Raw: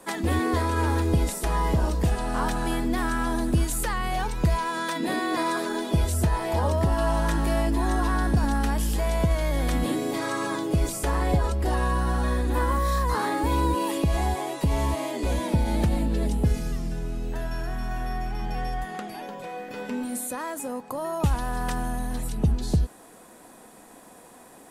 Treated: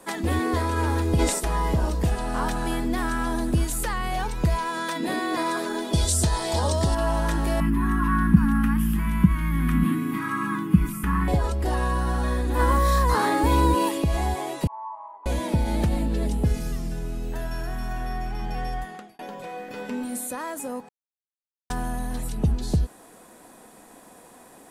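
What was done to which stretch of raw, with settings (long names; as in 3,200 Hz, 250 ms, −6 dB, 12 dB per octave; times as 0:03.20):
0:01.19–0:01.40: gain on a spectral selection 240–9,400 Hz +8 dB
0:05.93–0:06.95: flat-topped bell 5,600 Hz +11.5 dB
0:07.60–0:11.28: drawn EQ curve 120 Hz 0 dB, 190 Hz +14 dB, 320 Hz −2 dB, 610 Hz −28 dB, 1,100 Hz +5 dB, 2,700 Hz −1 dB, 4,200 Hz −15 dB, 7,600 Hz −13 dB, 12,000 Hz +1 dB
0:12.59–0:13.89: clip gain +4 dB
0:14.67–0:15.26: flat-topped band-pass 960 Hz, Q 3.9
0:16.60–0:17.93: high-shelf EQ 9,800 Hz +6.5 dB
0:18.77–0:19.19: fade out
0:20.89–0:21.70: silence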